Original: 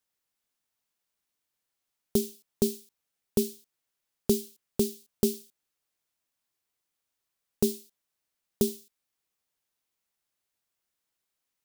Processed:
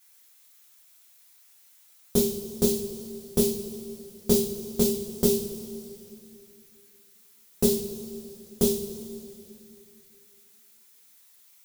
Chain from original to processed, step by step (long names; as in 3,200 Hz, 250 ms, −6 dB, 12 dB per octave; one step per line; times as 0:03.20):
background noise blue −64 dBFS
coupled-rooms reverb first 0.32 s, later 2.8 s, from −18 dB, DRR −7.5 dB
level −1.5 dB